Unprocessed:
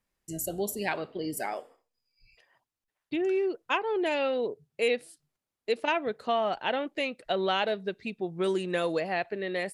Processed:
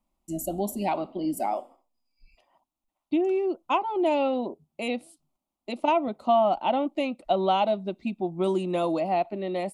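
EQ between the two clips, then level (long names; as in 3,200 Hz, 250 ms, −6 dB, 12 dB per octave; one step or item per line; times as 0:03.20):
high-shelf EQ 2,600 Hz −10.5 dB
parametric band 4,900 Hz −4.5 dB 0.73 octaves
phaser with its sweep stopped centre 450 Hz, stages 6
+8.5 dB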